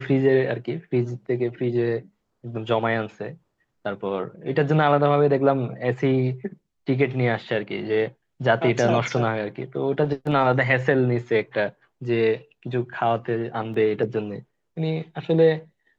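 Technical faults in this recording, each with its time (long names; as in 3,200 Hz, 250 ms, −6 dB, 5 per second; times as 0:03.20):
0:13.74: drop-out 3 ms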